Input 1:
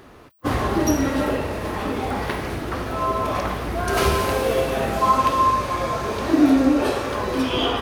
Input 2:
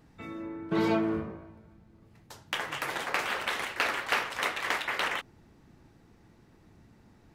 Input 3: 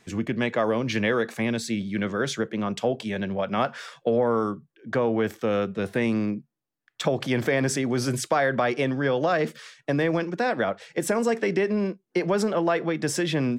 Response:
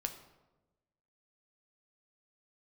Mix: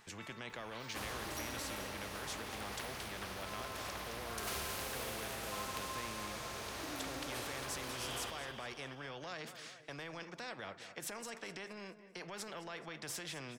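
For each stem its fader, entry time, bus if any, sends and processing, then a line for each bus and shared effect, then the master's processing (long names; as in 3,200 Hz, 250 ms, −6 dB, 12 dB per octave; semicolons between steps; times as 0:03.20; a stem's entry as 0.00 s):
−17.0 dB, 0.50 s, no send, echo send −10 dB, no processing
−6.0 dB, 0.00 s, no send, no echo send, elliptic high-pass filter 850 Hz; downward compressor 3 to 1, threshold −42 dBFS, peak gain reduction 13.5 dB; automatic ducking −13 dB, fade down 1.70 s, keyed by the third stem
−15.0 dB, 0.00 s, no send, echo send −20.5 dB, brickwall limiter −17.5 dBFS, peak gain reduction 6.5 dB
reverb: not used
echo: repeating echo 214 ms, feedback 45%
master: parametric band 270 Hz −6.5 dB 1.3 octaves; every bin compressed towards the loudest bin 2 to 1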